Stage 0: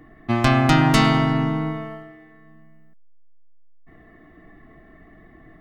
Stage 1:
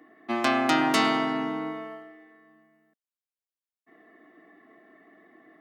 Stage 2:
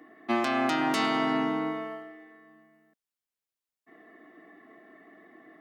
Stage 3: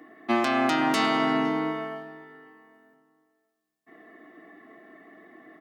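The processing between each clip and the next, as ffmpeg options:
ffmpeg -i in.wav -af "highpass=frequency=260:width=0.5412,highpass=frequency=260:width=1.3066,volume=-4dB" out.wav
ffmpeg -i in.wav -af "alimiter=limit=-18.5dB:level=0:latency=1:release=310,volume=2dB" out.wav
ffmpeg -i in.wav -filter_complex "[0:a]asplit=2[link_01][link_02];[link_02]adelay=509,lowpass=frequency=2200:poles=1,volume=-18dB,asplit=2[link_03][link_04];[link_04]adelay=509,lowpass=frequency=2200:poles=1,volume=0.32,asplit=2[link_05][link_06];[link_06]adelay=509,lowpass=frequency=2200:poles=1,volume=0.32[link_07];[link_01][link_03][link_05][link_07]amix=inputs=4:normalize=0,volume=3dB" out.wav

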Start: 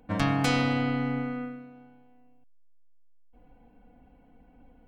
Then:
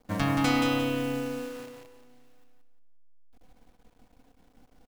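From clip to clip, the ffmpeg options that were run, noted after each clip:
ffmpeg -i in.wav -filter_complex "[0:a]acrusher=bits=8:dc=4:mix=0:aa=0.000001,asplit=2[link_01][link_02];[link_02]aecho=0:1:176|352|528|704:0.631|0.202|0.0646|0.0207[link_03];[link_01][link_03]amix=inputs=2:normalize=0,volume=-1.5dB" out.wav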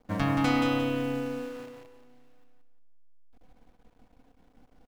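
ffmpeg -i in.wav -af "highshelf=frequency=4400:gain=-9" out.wav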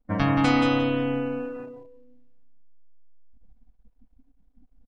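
ffmpeg -i in.wav -af "afftdn=noise_reduction=23:noise_floor=-47,volume=4.5dB" out.wav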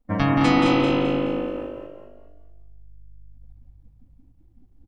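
ffmpeg -i in.wav -filter_complex "[0:a]bandreject=frequency=1500:width=18,asplit=2[link_01][link_02];[link_02]asplit=4[link_03][link_04][link_05][link_06];[link_03]adelay=212,afreqshift=50,volume=-5.5dB[link_07];[link_04]adelay=424,afreqshift=100,volume=-14.9dB[link_08];[link_05]adelay=636,afreqshift=150,volume=-24.2dB[link_09];[link_06]adelay=848,afreqshift=200,volume=-33.6dB[link_10];[link_07][link_08][link_09][link_10]amix=inputs=4:normalize=0[link_11];[link_01][link_11]amix=inputs=2:normalize=0,volume=2dB" out.wav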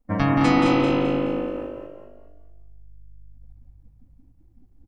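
ffmpeg -i in.wav -af "equalizer=frequency=3300:width_type=o:width=0.62:gain=-4" out.wav

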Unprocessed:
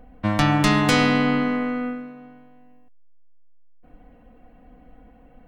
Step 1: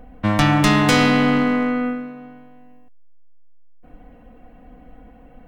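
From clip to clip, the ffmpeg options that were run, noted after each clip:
ffmpeg -i in.wav -filter_complex "[0:a]bandreject=frequency=4400:width=19,asplit=2[link_01][link_02];[link_02]aeval=exprs='0.1*(abs(mod(val(0)/0.1+3,4)-2)-1)':channel_layout=same,volume=-10dB[link_03];[link_01][link_03]amix=inputs=2:normalize=0,volume=2.5dB" out.wav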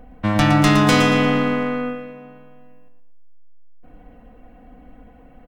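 ffmpeg -i in.wav -af "aecho=1:1:115|230|345|460:0.398|0.135|0.046|0.0156,volume=-1dB" out.wav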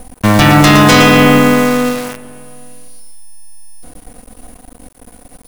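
ffmpeg -i in.wav -af "apsyclip=13dB,aeval=exprs='val(0)+0.0126*sin(2*PI*9700*n/s)':channel_layout=same,acrusher=bits=4:dc=4:mix=0:aa=0.000001,volume=-2dB" out.wav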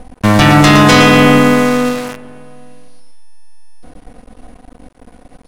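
ffmpeg -i in.wav -af "adynamicsmooth=sensitivity=3.5:basefreq=4300" out.wav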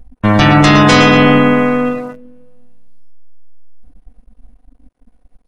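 ffmpeg -i in.wav -af "afftdn=noise_reduction=21:noise_floor=-22,volume=-1dB" out.wav

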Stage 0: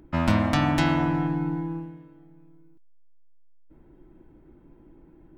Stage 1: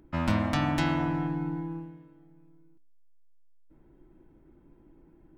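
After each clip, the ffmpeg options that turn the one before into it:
ffmpeg -i in.wav -af "bandreject=frequency=60.54:width_type=h:width=4,bandreject=frequency=121.08:width_type=h:width=4,bandreject=frequency=181.62:width_type=h:width=4,bandreject=frequency=242.16:width_type=h:width=4,bandreject=frequency=302.7:width_type=h:width=4,bandreject=frequency=363.24:width_type=h:width=4,bandreject=frequency=423.78:width_type=h:width=4,bandreject=frequency=484.32:width_type=h:width=4,bandreject=frequency=544.86:width_type=h:width=4,bandreject=frequency=605.4:width_type=h:width=4,bandreject=frequency=665.94:width_type=h:width=4,bandreject=frequency=726.48:width_type=h:width=4,bandreject=frequency=787.02:width_type=h:width=4,bandreject=frequency=847.56:width_type=h:width=4,bandreject=frequency=908.1:width_type=h:width=4,volume=-4.5dB" out.wav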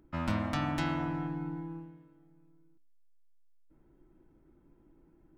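ffmpeg -i in.wav -af "equalizer=frequency=1300:width=6.9:gain=4,volume=-5.5dB" out.wav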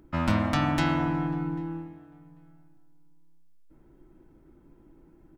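ffmpeg -i in.wav -filter_complex "[0:a]asplit=2[link_01][link_02];[link_02]adelay=793,lowpass=frequency=1900:poles=1,volume=-23dB,asplit=2[link_03][link_04];[link_04]adelay=793,lowpass=frequency=1900:poles=1,volume=0.16[link_05];[link_01][link_03][link_05]amix=inputs=3:normalize=0,volume=7dB" out.wav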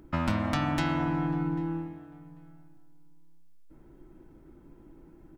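ffmpeg -i in.wav -af "acompressor=threshold=-29dB:ratio=3,volume=3dB" out.wav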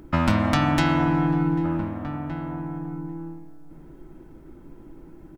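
ffmpeg -i in.wav -filter_complex "[0:a]asplit=2[link_01][link_02];[link_02]adelay=1516,volume=-10dB,highshelf=frequency=4000:gain=-34.1[link_03];[link_01][link_03]amix=inputs=2:normalize=0,volume=7.5dB" out.wav

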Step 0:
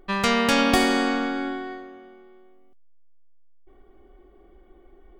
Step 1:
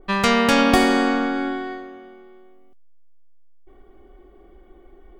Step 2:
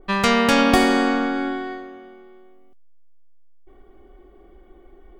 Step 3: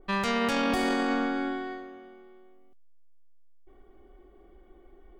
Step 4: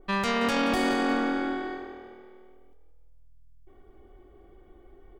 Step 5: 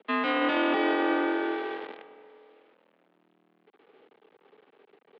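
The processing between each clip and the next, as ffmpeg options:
ffmpeg -i in.wav -af "adynamicequalizer=threshold=0.02:dfrequency=2100:dqfactor=0.7:tfrequency=2100:tqfactor=0.7:attack=5:release=100:ratio=0.375:range=2.5:mode=cutabove:tftype=highshelf,volume=4dB" out.wav
ffmpeg -i in.wav -af anull out.wav
ffmpeg -i in.wav -af "alimiter=limit=-12.5dB:level=0:latency=1:release=18,volume=-6dB" out.wav
ffmpeg -i in.wav -filter_complex "[0:a]asplit=5[link_01][link_02][link_03][link_04][link_05];[link_02]adelay=177,afreqshift=40,volume=-12dB[link_06];[link_03]adelay=354,afreqshift=80,volume=-19.3dB[link_07];[link_04]adelay=531,afreqshift=120,volume=-26.7dB[link_08];[link_05]adelay=708,afreqshift=160,volume=-34dB[link_09];[link_01][link_06][link_07][link_08][link_09]amix=inputs=5:normalize=0,volume=1dB" out.wav
ffmpeg -i in.wav -af "acrusher=bits=7:dc=4:mix=0:aa=0.000001,highpass=frequency=150:width_type=q:width=0.5412,highpass=frequency=150:width_type=q:width=1.307,lowpass=frequency=3400:width_type=q:width=0.5176,lowpass=frequency=3400:width_type=q:width=0.7071,lowpass=frequency=3400:width_type=q:width=1.932,afreqshift=58" out.wav

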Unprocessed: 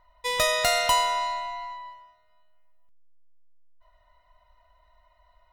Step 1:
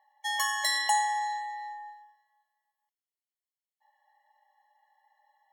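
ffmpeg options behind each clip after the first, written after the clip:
ffmpeg -i in.wav -af "lowshelf=frequency=560:width_type=q:width=1.5:gain=11.5,afreqshift=-150,afftfilt=real='re*eq(mod(floor(b*sr/1024/570),2),1)':imag='im*eq(mod(floor(b*sr/1024/570),2),1)':win_size=1024:overlap=0.75" out.wav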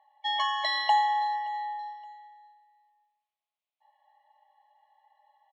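ffmpeg -i in.wav -af "highpass=500,equalizer=frequency=660:width_type=q:width=4:gain=9,equalizer=frequency=1100:width_type=q:width=4:gain=4,equalizer=frequency=1700:width_type=q:width=4:gain=-9,equalizer=frequency=2500:width_type=q:width=4:gain=8,equalizer=frequency=3600:width_type=q:width=4:gain=5,lowpass=frequency=3800:width=0.5412,lowpass=frequency=3800:width=1.3066,aecho=1:1:572|1144:0.0891|0.0294,volume=1.5dB" out.wav

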